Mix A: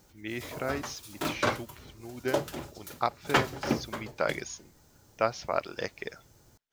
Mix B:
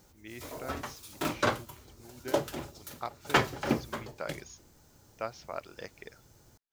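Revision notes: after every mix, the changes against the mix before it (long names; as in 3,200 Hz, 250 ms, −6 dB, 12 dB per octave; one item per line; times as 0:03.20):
speech −9.5 dB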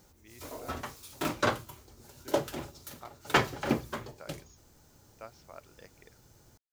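speech −10.5 dB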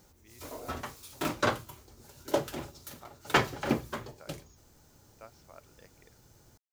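speech −4.0 dB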